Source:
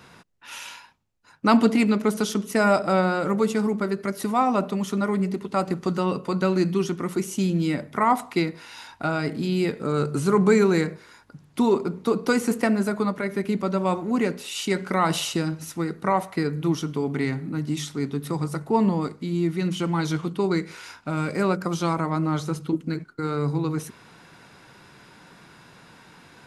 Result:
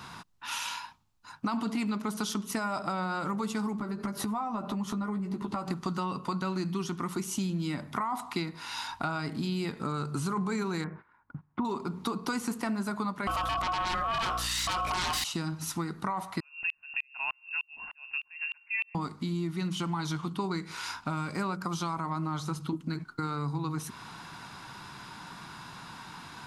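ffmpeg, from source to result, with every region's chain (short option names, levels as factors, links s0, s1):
-filter_complex "[0:a]asettb=1/sr,asplit=3[s0][s1][s2];[s0]atrim=end=3.794[s3];[s1]atrim=start=3.79:end=5.68,asetpts=PTS-STARTPTS,afade=t=in:d=0.004:c=qsin,afade=t=out:st=1.886:d=0.004:c=qsin,tiltshelf=f=1400:g=4.5,acompressor=threshold=0.0398:ratio=4:attack=3.2:release=140:knee=1:detection=peak,asplit=2[s4][s5];[s5]adelay=14,volume=0.501[s6];[s4][s6]amix=inputs=2:normalize=0,atrim=end_sample=83349[s7];[s2]atrim=start=5.676[s8];[s3][s7]acrossfade=d=0.004:c1=hsin:c2=qsin[s9];[s9][s8]acrossfade=d=0.004:c1=qsin:c2=hsin,asettb=1/sr,asplit=3[s10][s11][s12];[s10]atrim=end=10.844[s13];[s11]atrim=start=10.84:end=11.65,asetpts=PTS-STARTPTS,afade=t=in:d=0.004:c=qsin,afade=t=out:st=0.806:d=0.004:c=qsin,lowpass=f=2000:w=0.5412,lowpass=f=2000:w=1.3066,agate=range=0.126:threshold=0.00355:ratio=16:release=100:detection=peak[s14];[s12]atrim=start=11.646[s15];[s13][s14]acrossfade=d=0.004:c1=hsin:c2=qsin[s16];[s16][s15]acrossfade=d=0.004:c1=qsin:c2=hsin,asettb=1/sr,asplit=3[s17][s18][s19];[s17]atrim=end=13.274[s20];[s18]atrim=start=13.27:end=15.24,asetpts=PTS-STARTPTS,afade=t=in:d=0.004:c=qsin,afade=t=out:st=1.966:d=0.004:c=qsin,aeval=exprs='val(0)*sin(2*PI*910*n/s)':c=same,aeval=exprs='0.355*sin(PI/2*5.62*val(0)/0.355)':c=same,aeval=exprs='val(0)+0.0447*(sin(2*PI*60*n/s)+sin(2*PI*2*60*n/s)/2+sin(2*PI*3*60*n/s)/3+sin(2*PI*4*60*n/s)/4+sin(2*PI*5*60*n/s)/5)':c=same[s21];[s19]atrim=start=15.236[s22];[s20][s21]acrossfade=d=0.004:c1=hsin:c2=qsin[s23];[s23][s22]acrossfade=d=0.004:c1=qsin:c2=hsin,asettb=1/sr,asplit=3[s24][s25][s26];[s24]atrim=end=16.404[s27];[s25]atrim=start=16.4:end=18.95,asetpts=PTS-STARTPTS,afade=t=in:d=0.004:c=qsin,afade=t=out:st=2.546:d=0.004:c=qsin,lowpass=f=2500:t=q:w=0.5098,lowpass=f=2500:t=q:w=0.6013,lowpass=f=2500:t=q:w=0.9,lowpass=f=2500:t=q:w=2.563,afreqshift=-2900,aeval=exprs='val(0)*pow(10,-40*if(lt(mod(-3.3*n/s,1),2*abs(-3.3)/1000),1-mod(-3.3*n/s,1)/(2*abs(-3.3)/1000),(mod(-3.3*n/s,1)-2*abs(-3.3)/1000)/(1-2*abs(-3.3)/1000))/20)':c=same[s28];[s26]atrim=start=18.946[s29];[s27][s28]acrossfade=d=0.004:c1=hsin:c2=qsin[s30];[s30][s29]acrossfade=d=0.004:c1=qsin:c2=hsin,equalizer=f=500:t=o:w=1:g=-11,equalizer=f=1000:t=o:w=1:g=8,equalizer=f=2000:t=o:w=1:g=-4,equalizer=f=4000:t=o:w=1:g=3,alimiter=limit=0.178:level=0:latency=1:release=15,acompressor=threshold=0.0178:ratio=4,volume=1.58"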